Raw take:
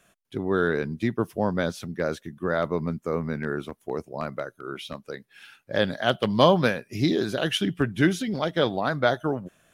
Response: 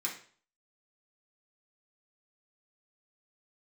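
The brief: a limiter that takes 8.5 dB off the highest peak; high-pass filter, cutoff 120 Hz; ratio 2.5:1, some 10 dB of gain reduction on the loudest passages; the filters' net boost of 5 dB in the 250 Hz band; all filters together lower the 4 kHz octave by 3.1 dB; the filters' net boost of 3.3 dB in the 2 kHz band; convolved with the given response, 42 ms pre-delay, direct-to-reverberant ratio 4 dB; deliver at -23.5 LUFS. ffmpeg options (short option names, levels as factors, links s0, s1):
-filter_complex "[0:a]highpass=120,equalizer=f=250:t=o:g=7,equalizer=f=2000:t=o:g=6,equalizer=f=4000:t=o:g=-7.5,acompressor=threshold=0.0501:ratio=2.5,alimiter=limit=0.1:level=0:latency=1,asplit=2[s0][s1];[1:a]atrim=start_sample=2205,adelay=42[s2];[s1][s2]afir=irnorm=-1:irlink=0,volume=0.447[s3];[s0][s3]amix=inputs=2:normalize=0,volume=2.37"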